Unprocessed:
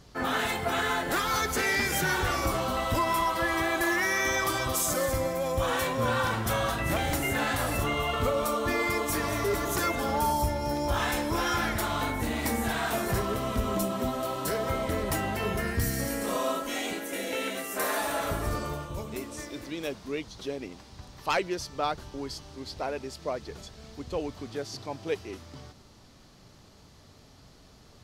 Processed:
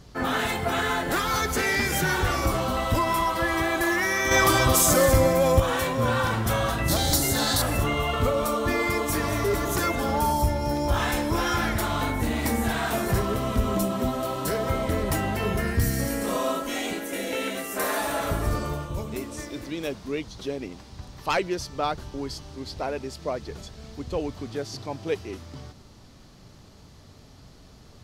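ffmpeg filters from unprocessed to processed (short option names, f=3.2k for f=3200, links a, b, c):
-filter_complex "[0:a]asettb=1/sr,asplit=3[a][b][c];[a]atrim=end=4.314[d];[b]atrim=start=4.31:end=5.6,asetpts=PTS-STARTPTS,afade=t=in:d=0.004:c=qsin,afade=t=out:st=1.286:d=0.004:c=qsin,acontrast=67[e];[c]atrim=start=5.596[f];[d][e]acrossfade=d=0.004:c1=hsin:c2=qsin[g];[g][f]acrossfade=d=0.004:c1=qsin:c2=hsin,asettb=1/sr,asplit=3[h][i][j];[h]atrim=end=6.884[k];[i]atrim=start=6.88:end=7.62,asetpts=PTS-STARTPTS,afade=t=in:d=0.004:c=qsin,afade=t=out:st=0.736:d=0.004:c=qsin,highshelf=f=3.3k:t=q:w=3:g=8.5[l];[j]atrim=start=7.616[m];[k][l]acrossfade=d=0.004:c1=hsin:c2=qsin[n];[n][m]acrossfade=d=0.004:c1=qsin:c2=hsin,lowshelf=f=280:g=4.5,acontrast=50,volume=-4dB"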